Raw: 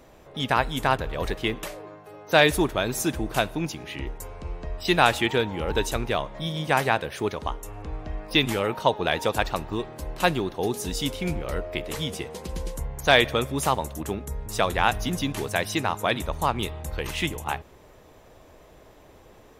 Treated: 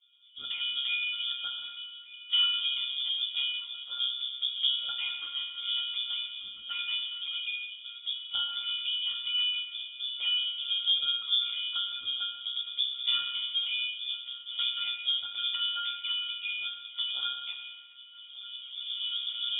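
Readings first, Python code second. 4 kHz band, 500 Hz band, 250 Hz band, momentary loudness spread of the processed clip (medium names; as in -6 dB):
+5.5 dB, under -40 dB, under -40 dB, 11 LU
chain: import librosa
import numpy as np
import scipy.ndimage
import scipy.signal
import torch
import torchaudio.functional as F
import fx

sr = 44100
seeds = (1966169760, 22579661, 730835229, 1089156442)

p1 = fx.hpss_only(x, sr, part='percussive')
p2 = fx.recorder_agc(p1, sr, target_db=-10.5, rise_db_per_s=20.0, max_gain_db=30)
p3 = fx.schmitt(p2, sr, flips_db=-20.0)
p4 = p2 + (p3 * 10.0 ** (-4.5 / 20.0))
p5 = fx.octave_resonator(p4, sr, note='C', decay_s=0.54)
p6 = p5 + fx.echo_feedback(p5, sr, ms=1185, feedback_pct=57, wet_db=-20.5, dry=0)
p7 = fx.rev_plate(p6, sr, seeds[0], rt60_s=1.5, hf_ratio=0.9, predelay_ms=0, drr_db=2.5)
p8 = fx.freq_invert(p7, sr, carrier_hz=3500)
y = p8 * 10.0 ** (5.0 / 20.0)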